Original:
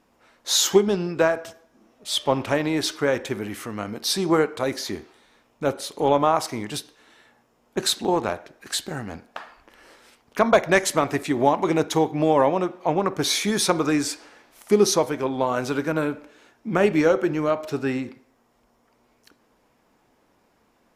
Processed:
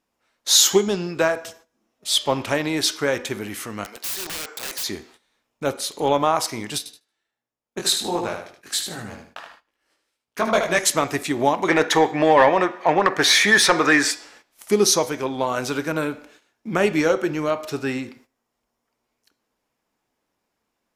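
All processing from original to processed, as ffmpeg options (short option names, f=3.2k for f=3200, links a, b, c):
-filter_complex "[0:a]asettb=1/sr,asplit=3[a][b][c];[a]atrim=end=3.844[d];[b]atrim=start=3.84:end=4.84,asetpts=PTS-STARTPTS,afade=t=in:d=0.004:c=qsin,afade=t=out:st=0.996:d=0.004:c=qsin,highpass=620,acompressor=threshold=-26dB:ratio=4:attack=3.2:release=140:knee=1:detection=peak,aeval=exprs='(mod(26.6*val(0)+1,2)-1)/26.6':c=same[e];[c]atrim=start=4.836[f];[d][e]acrossfade=d=0.004:c1=hsin:c2=qsin[g];[g][f]acrossfade=d=0.004:c1=qsin:c2=hsin,asettb=1/sr,asplit=3[h][i][j];[h]atrim=end=6.784[k];[i]atrim=start=6.78:end=10.79,asetpts=PTS-STARTPTS,afade=t=in:d=0.004:c=qsin,afade=t=out:st=4.006:d=0.004:c=qsin,agate=range=-11dB:threshold=-51dB:ratio=16:release=100:detection=peak,flanger=delay=17:depth=5.7:speed=1.4,aecho=1:1:76|152|228|304:0.447|0.138|0.0429|0.0133,atrim=end_sample=176841[l];[j]atrim=start=10.786[m];[k][l]acrossfade=d=0.004:c1=hsin:c2=qsin[n];[n][m]acrossfade=d=0.004:c1=qsin:c2=hsin,asettb=1/sr,asplit=3[o][p][q];[o]atrim=end=11.684[r];[p]atrim=start=11.68:end=14.11,asetpts=PTS-STARTPTS,afade=t=in:d=0.004:c=qsin,afade=t=out:st=2.426:d=0.004:c=qsin,equalizer=f=1.8k:w=5:g=13,asplit=2[s][t];[t]highpass=f=720:p=1,volume=15dB,asoftclip=type=tanh:threshold=-2dB[u];[s][u]amix=inputs=2:normalize=0,lowpass=f=2k:p=1,volume=-6dB[v];[q]atrim=start=14.106[w];[r][v]acrossfade=d=0.004:c1=hsin:c2=qsin[x];[x][w]acrossfade=d=0.004:c1=qsin:c2=hsin,bandreject=f=244.4:t=h:w=4,bandreject=f=488.8:t=h:w=4,bandreject=f=733.2:t=h:w=4,bandreject=f=977.6:t=h:w=4,bandreject=f=1.222k:t=h:w=4,bandreject=f=1.4664k:t=h:w=4,bandreject=f=1.7108k:t=h:w=4,bandreject=f=1.9552k:t=h:w=4,bandreject=f=2.1996k:t=h:w=4,bandreject=f=2.444k:t=h:w=4,bandreject=f=2.6884k:t=h:w=4,bandreject=f=2.9328k:t=h:w=4,bandreject=f=3.1772k:t=h:w=4,bandreject=f=3.4216k:t=h:w=4,bandreject=f=3.666k:t=h:w=4,bandreject=f=3.9104k:t=h:w=4,bandreject=f=4.1548k:t=h:w=4,bandreject=f=4.3992k:t=h:w=4,bandreject=f=4.6436k:t=h:w=4,bandreject=f=4.888k:t=h:w=4,bandreject=f=5.1324k:t=h:w=4,bandreject=f=5.3768k:t=h:w=4,bandreject=f=5.6212k:t=h:w=4,bandreject=f=5.8656k:t=h:w=4,bandreject=f=6.11k:t=h:w=4,bandreject=f=6.3544k:t=h:w=4,bandreject=f=6.5988k:t=h:w=4,bandreject=f=6.8432k:t=h:w=4,bandreject=f=7.0876k:t=h:w=4,bandreject=f=7.332k:t=h:w=4,bandreject=f=7.5764k:t=h:w=4,bandreject=f=7.8208k:t=h:w=4,agate=range=-14dB:threshold=-50dB:ratio=16:detection=peak,highshelf=f=2.1k:g=8,volume=-1dB"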